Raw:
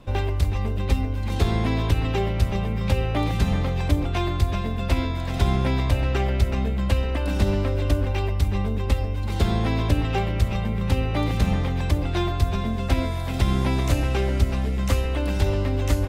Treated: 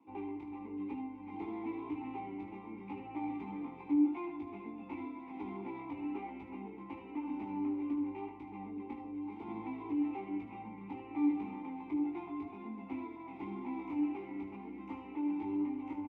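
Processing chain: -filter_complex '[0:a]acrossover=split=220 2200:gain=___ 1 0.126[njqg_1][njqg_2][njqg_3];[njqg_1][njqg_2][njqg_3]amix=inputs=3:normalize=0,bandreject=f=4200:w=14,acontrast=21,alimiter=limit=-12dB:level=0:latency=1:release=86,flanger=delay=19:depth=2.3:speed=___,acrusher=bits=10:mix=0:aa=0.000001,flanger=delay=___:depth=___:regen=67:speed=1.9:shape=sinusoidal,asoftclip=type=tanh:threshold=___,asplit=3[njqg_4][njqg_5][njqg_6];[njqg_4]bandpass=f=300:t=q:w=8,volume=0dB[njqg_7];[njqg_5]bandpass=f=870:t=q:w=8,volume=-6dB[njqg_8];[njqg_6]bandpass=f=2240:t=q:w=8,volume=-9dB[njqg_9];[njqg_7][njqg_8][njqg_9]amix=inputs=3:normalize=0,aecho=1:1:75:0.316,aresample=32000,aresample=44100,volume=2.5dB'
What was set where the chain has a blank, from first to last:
0.178, 0.94, 8.5, 2, -23dB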